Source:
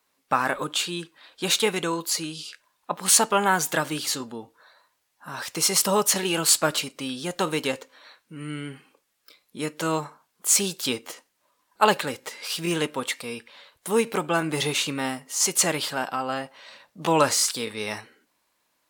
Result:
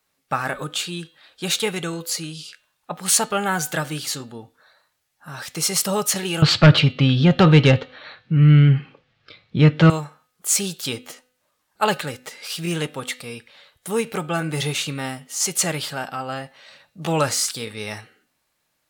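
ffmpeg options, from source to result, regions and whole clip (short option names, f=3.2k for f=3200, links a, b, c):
-filter_complex "[0:a]asettb=1/sr,asplit=3[a][b][c];[a]atrim=end=6.424[d];[b]atrim=start=6.42:end=9.9,asetpts=PTS-STARTPTS,afade=t=in:d=0.004:c=qsin,afade=t=out:st=3.476:d=0.004:c=qsin,lowpass=f=3.9k:w=0.5412,lowpass=f=3.9k:w=1.3066,equalizer=f=110:w=1.1:g=13.5,aeval=exprs='0.422*sin(PI/2*2.24*val(0)/0.422)':c=same[e];[c]atrim=start=9.896[f];[d][e]acrossfade=d=0.004:c1=hsin:c2=qsin[g];[g][f]acrossfade=d=0.004:c1=qsin:c2=hsin,lowshelf=f=190:t=q:w=1.5:g=6,bandreject=f=1k:w=6.8,bandreject=f=251:t=h:w=4,bandreject=f=502:t=h:w=4,bandreject=f=753:t=h:w=4,bandreject=f=1.004k:t=h:w=4,bandreject=f=1.255k:t=h:w=4,bandreject=f=1.506k:t=h:w=4,bandreject=f=1.757k:t=h:w=4,bandreject=f=2.008k:t=h:w=4,bandreject=f=2.259k:t=h:w=4,bandreject=f=2.51k:t=h:w=4,bandreject=f=2.761k:t=h:w=4,bandreject=f=3.012k:t=h:w=4,bandreject=f=3.263k:t=h:w=4,bandreject=f=3.514k:t=h:w=4,bandreject=f=3.765k:t=h:w=4,bandreject=f=4.016k:t=h:w=4,bandreject=f=4.267k:t=h:w=4,bandreject=f=4.518k:t=h:w=4"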